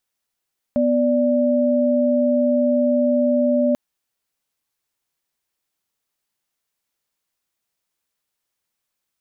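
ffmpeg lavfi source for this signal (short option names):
-f lavfi -i "aevalsrc='0.133*(sin(2*PI*246.94*t)+sin(2*PI*587.33*t))':d=2.99:s=44100"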